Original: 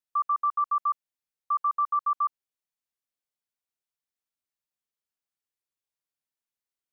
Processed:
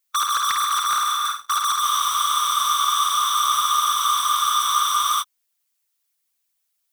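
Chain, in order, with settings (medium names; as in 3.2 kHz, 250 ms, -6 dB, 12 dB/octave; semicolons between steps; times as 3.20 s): formants replaced by sine waves; fuzz box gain 48 dB, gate -57 dBFS; steep high-pass 1.1 kHz 48 dB/octave; on a send: flutter echo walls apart 8.8 m, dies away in 0.67 s; on the sum: gated-style reverb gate 410 ms flat, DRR 8.5 dB; reverse; compression 8:1, threshold -27 dBFS, peak gain reduction 16 dB; reverse; added noise blue -74 dBFS; harmonic-percussive split percussive +7 dB; waveshaping leveller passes 2; spectral freeze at 1.84 s, 3.37 s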